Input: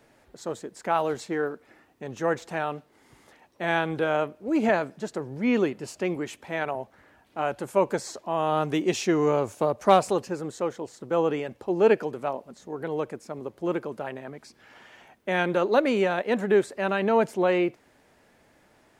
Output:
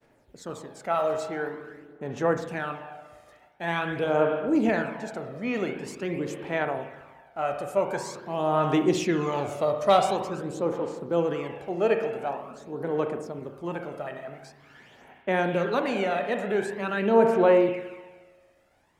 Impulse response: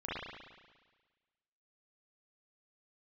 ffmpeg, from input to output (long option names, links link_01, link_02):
-filter_complex "[0:a]agate=range=-33dB:threshold=-55dB:ratio=3:detection=peak,asplit=2[link_01][link_02];[1:a]atrim=start_sample=2205[link_03];[link_02][link_03]afir=irnorm=-1:irlink=0,volume=-6.5dB[link_04];[link_01][link_04]amix=inputs=2:normalize=0,aphaser=in_gain=1:out_gain=1:delay=1.6:decay=0.48:speed=0.46:type=sinusoidal,asettb=1/sr,asplit=3[link_05][link_06][link_07];[link_05]atrim=end=9.324[link_08];[link_06]atrim=start=9.32:end=10.17,asetpts=PTS-STARTPTS,afade=type=in:duration=0.004:curve=qsin,afade=type=out:start_time=0.846:duration=0.004:curve=qsin,equalizer=frequency=3600:width_type=o:width=1.1:gain=6[link_09];[link_07]atrim=start=10.166[link_10];[link_08][link_09]acrossfade=duration=0.004:curve1=hsin:curve2=qsin[link_11];[link_11][link_10]acrossfade=duration=0.004:curve1=qsin:curve2=hsin,volume=-5.5dB"